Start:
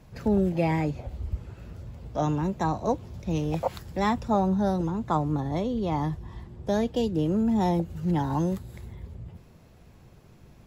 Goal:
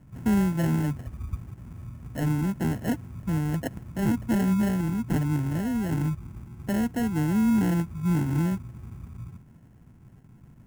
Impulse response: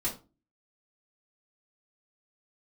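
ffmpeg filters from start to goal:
-af "acrusher=samples=37:mix=1:aa=0.000001,equalizer=f=125:t=o:w=1:g=7,equalizer=f=250:t=o:w=1:g=7,equalizer=f=500:t=o:w=1:g=-7,equalizer=f=4000:t=o:w=1:g=-11,volume=0.631"

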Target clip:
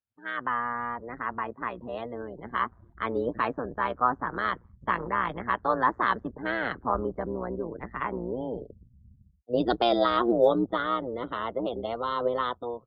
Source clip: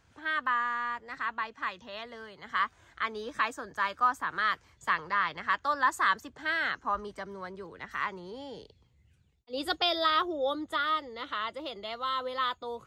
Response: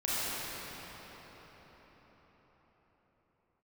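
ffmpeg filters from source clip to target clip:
-filter_complex "[0:a]tremolo=f=120:d=0.857,lowpass=f=4600:w=0.5412,lowpass=f=4600:w=1.3066,acrossover=split=760[s0][s1];[s0]dynaudnorm=f=170:g=5:m=5.62[s2];[s2][s1]amix=inputs=2:normalize=0,acrusher=bits=7:mode=log:mix=0:aa=0.000001,afftdn=nr=30:nf=-46"

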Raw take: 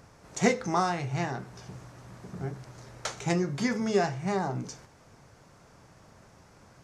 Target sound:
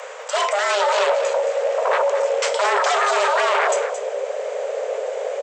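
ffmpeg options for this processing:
-af "aeval=exprs='0.355*(cos(1*acos(clip(val(0)/0.355,-1,1)))-cos(1*PI/2))+0.0282*(cos(3*acos(clip(val(0)/0.355,-1,1)))-cos(3*PI/2))+0.02*(cos(5*acos(clip(val(0)/0.355,-1,1)))-cos(5*PI/2))+0.0355*(cos(7*acos(clip(val(0)/0.355,-1,1)))-cos(7*PI/2))':c=same,areverse,acompressor=threshold=0.0224:ratio=4,areverse,alimiter=level_in=3.35:limit=0.0631:level=0:latency=1:release=18,volume=0.299,asubboost=boost=6:cutoff=230,asetrate=55566,aresample=44100,aresample=16000,aeval=exprs='0.0708*sin(PI/2*7.94*val(0)/0.0708)':c=same,aresample=44100,afreqshift=400,aecho=1:1:222:0.316,volume=2.37"

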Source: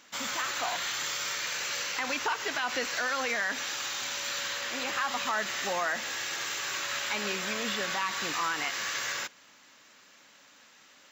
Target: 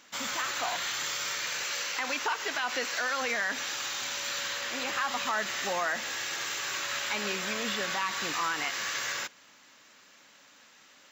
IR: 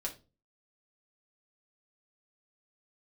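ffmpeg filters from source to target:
-filter_complex "[0:a]asettb=1/sr,asplit=3[s0][s1][s2];[s0]atrim=end=1.634[s3];[s1]atrim=start=1.63:end=3.22,asetpts=PTS-STARTPTS,afade=t=in:d=0.004:c=qsin,afade=t=out:st=1.586:d=0.004:c=qsin,lowshelf=f=140:g=-11.5[s4];[s2]atrim=start=3.216[s5];[s3][s4]acrossfade=d=0.004:c1=hsin:c2=qsin[s6];[s6][s5]acrossfade=d=0.004:c1=qsin:c2=hsin"

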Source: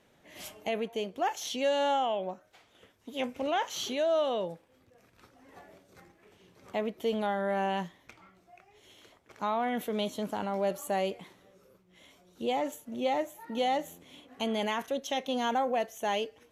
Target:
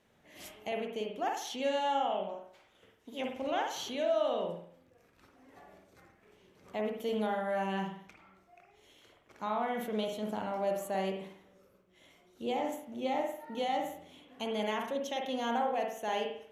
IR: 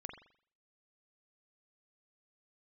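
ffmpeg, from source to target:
-filter_complex "[0:a]asettb=1/sr,asplit=3[s0][s1][s2];[s0]atrim=end=6.864[s3];[s1]atrim=start=6.86:end=7.74,asetpts=PTS-STARTPTS,afade=t=in:d=0.004:c=qsin,afade=t=out:st=0.876:d=0.004:c=qsin,highshelf=f=6700:g=6[s4];[s2]atrim=start=7.736[s5];[s3][s4]acrossfade=d=0.004:c1=hsin:c2=qsin[s6];[s6][s5]acrossfade=d=0.004:c1=qsin:c2=hsin[s7];[1:a]atrim=start_sample=2205,asetrate=39690,aresample=44100[s8];[s7][s8]afir=irnorm=-1:irlink=0"

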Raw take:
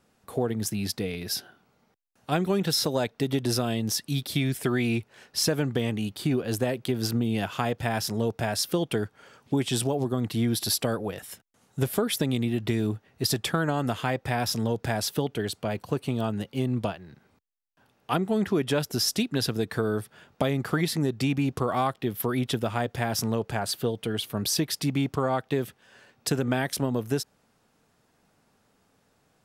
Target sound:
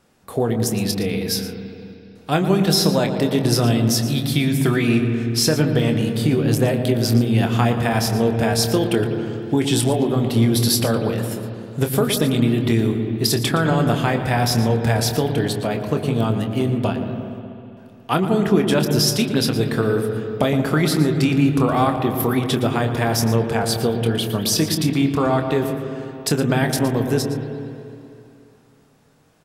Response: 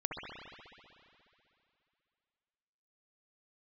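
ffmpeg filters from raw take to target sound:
-filter_complex "[0:a]asplit=2[s0][s1];[s1]adelay=26,volume=0.355[s2];[s0][s2]amix=inputs=2:normalize=0,asplit=2[s3][s4];[1:a]atrim=start_sample=2205,lowshelf=f=470:g=9.5,adelay=116[s5];[s4][s5]afir=irnorm=-1:irlink=0,volume=0.237[s6];[s3][s6]amix=inputs=2:normalize=0,volume=2"

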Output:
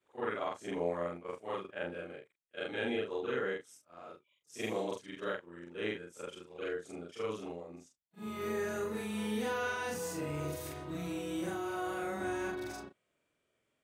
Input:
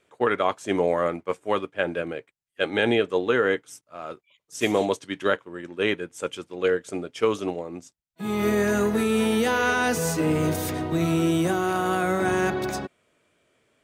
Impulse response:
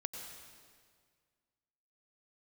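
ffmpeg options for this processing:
-af "afftfilt=real='re':imag='-im':win_size=4096:overlap=0.75,volume=0.355"

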